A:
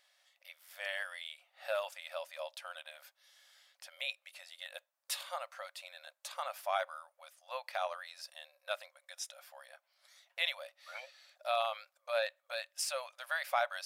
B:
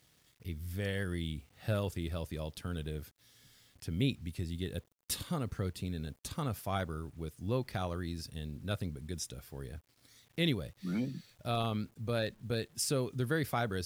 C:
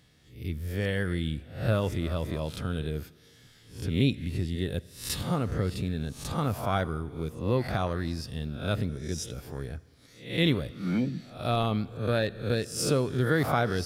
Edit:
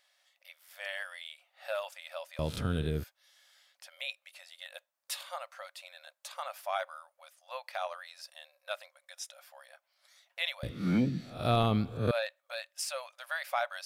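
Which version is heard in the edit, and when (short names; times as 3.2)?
A
2.39–3.04 from C
10.63–12.11 from C
not used: B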